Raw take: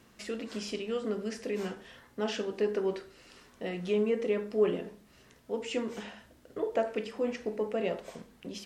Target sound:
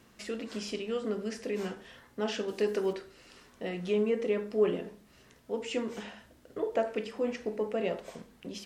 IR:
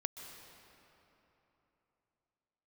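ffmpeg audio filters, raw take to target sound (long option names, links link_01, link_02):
-filter_complex "[0:a]asettb=1/sr,asplit=3[link_01][link_02][link_03];[link_01]atrim=end=2.484[link_04];[link_02]atrim=start=2.48:end=2.93,asetpts=PTS-STARTPTS,afade=type=in:duration=0.004:curve=qsin,afade=type=out:start_time=0.446:duration=0.004:curve=qsin,highshelf=frequency=3900:gain=11.5[link_05];[link_03]atrim=start=2.926[link_06];[link_04][link_05]acrossfade=duration=0.004:curve1=hsin:curve2=qsin[link_07];[link_07][link_06]acrossfade=duration=0.004:curve1=qsin:curve2=hsin"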